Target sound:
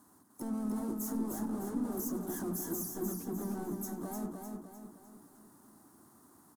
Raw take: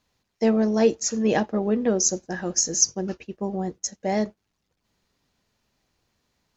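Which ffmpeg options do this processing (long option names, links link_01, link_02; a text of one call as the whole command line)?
ffmpeg -i in.wav -filter_complex "[0:a]acompressor=threshold=-34dB:ratio=2,highpass=70,acrossover=split=4500[link_01][link_02];[link_02]acompressor=threshold=-44dB:ratio=4:attack=1:release=60[link_03];[link_01][link_03]amix=inputs=2:normalize=0,highshelf=frequency=1900:width_type=q:width=1.5:gain=-7,bandreject=frequency=60:width_type=h:width=6,bandreject=frequency=120:width_type=h:width=6,bandreject=frequency=180:width_type=h:width=6,bandreject=frequency=240:width_type=h:width=6,bandreject=frequency=300:width_type=h:width=6,alimiter=level_in=5dB:limit=-24dB:level=0:latency=1:release=13,volume=-5dB,asplit=2[link_04][link_05];[link_05]highpass=frequency=720:poles=1,volume=29dB,asoftclip=type=tanh:threshold=-29dB[link_06];[link_04][link_06]amix=inputs=2:normalize=0,lowpass=frequency=2200:poles=1,volume=-6dB,asplit=3[link_07][link_08][link_09];[link_08]asetrate=52444,aresample=44100,atempo=0.840896,volume=-9dB[link_10];[link_09]asetrate=88200,aresample=44100,atempo=0.5,volume=-9dB[link_11];[link_07][link_10][link_11]amix=inputs=3:normalize=0,firequalizer=gain_entry='entry(160,0);entry(290,8);entry(490,-15);entry(710,-9);entry(1100,-7);entry(2400,-25);entry(3900,-14);entry(9400,15)':delay=0.05:min_phase=1,asplit=2[link_12][link_13];[link_13]aecho=0:1:303|606|909|1212|1515|1818:0.596|0.274|0.126|0.058|0.0267|0.0123[link_14];[link_12][link_14]amix=inputs=2:normalize=0,volume=-2.5dB" out.wav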